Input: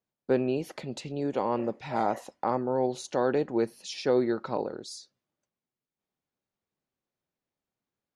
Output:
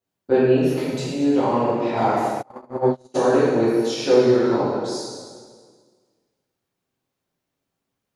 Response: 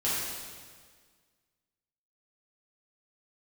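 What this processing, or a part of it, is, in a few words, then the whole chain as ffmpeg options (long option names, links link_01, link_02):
stairwell: -filter_complex "[1:a]atrim=start_sample=2205[link_01];[0:a][link_01]afir=irnorm=-1:irlink=0,asplit=3[link_02][link_03][link_04];[link_02]afade=type=out:start_time=2.41:duration=0.02[link_05];[link_03]agate=range=-33dB:threshold=-15dB:ratio=16:detection=peak,afade=type=in:start_time=2.41:duration=0.02,afade=type=out:start_time=3.14:duration=0.02[link_06];[link_04]afade=type=in:start_time=3.14:duration=0.02[link_07];[link_05][link_06][link_07]amix=inputs=3:normalize=0"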